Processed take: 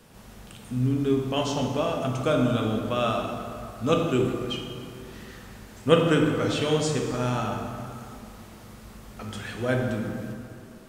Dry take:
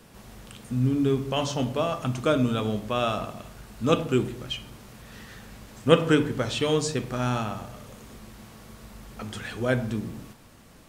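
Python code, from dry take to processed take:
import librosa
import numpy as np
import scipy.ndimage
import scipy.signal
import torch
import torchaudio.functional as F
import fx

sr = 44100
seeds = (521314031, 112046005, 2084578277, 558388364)

y = fx.rev_plate(x, sr, seeds[0], rt60_s=2.5, hf_ratio=0.55, predelay_ms=0, drr_db=1.5)
y = y * librosa.db_to_amplitude(-2.0)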